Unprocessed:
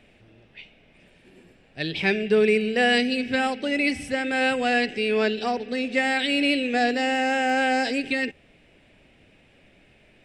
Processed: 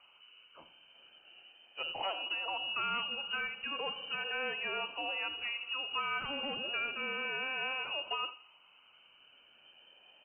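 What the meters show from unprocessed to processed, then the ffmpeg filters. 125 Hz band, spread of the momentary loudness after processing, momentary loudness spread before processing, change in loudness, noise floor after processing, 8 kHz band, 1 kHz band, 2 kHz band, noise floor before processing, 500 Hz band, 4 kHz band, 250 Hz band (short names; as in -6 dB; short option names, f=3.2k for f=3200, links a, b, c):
-21.0 dB, 3 LU, 7 LU, -12.5 dB, -63 dBFS, under -35 dB, -12.5 dB, -12.0 dB, -57 dBFS, -20.5 dB, -6.0 dB, -27.5 dB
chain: -filter_complex "[0:a]afftfilt=real='re*pow(10,8/40*sin(2*PI*(1*log(max(b,1)*sr/1024/100)/log(2)-(-0.35)*(pts-256)/sr)))':imag='im*pow(10,8/40*sin(2*PI*(1*log(max(b,1)*sr/1024/100)/log(2)-(-0.35)*(pts-256)/sr)))':win_size=1024:overlap=0.75,acrossover=split=2300[a][b];[a]acompressor=threshold=-30dB:ratio=6[c];[c][b]amix=inputs=2:normalize=0,equalizer=f=360:w=3.2:g=-6.5,asplit=2[d][e];[e]adelay=83,lowpass=f=2k:p=1,volume=-13dB,asplit=2[f][g];[g]adelay=83,lowpass=f=2k:p=1,volume=0.4,asplit=2[h][i];[i]adelay=83,lowpass=f=2k:p=1,volume=0.4,asplit=2[j][k];[k]adelay=83,lowpass=f=2k:p=1,volume=0.4[l];[f][h][j][l]amix=inputs=4:normalize=0[m];[d][m]amix=inputs=2:normalize=0,aeval=exprs='clip(val(0),-1,0.0668)':c=same,aemphasis=mode=reproduction:type=75kf,lowpass=f=2.6k:t=q:w=0.5098,lowpass=f=2.6k:t=q:w=0.6013,lowpass=f=2.6k:t=q:w=0.9,lowpass=f=2.6k:t=q:w=2.563,afreqshift=-3100,volume=-4.5dB"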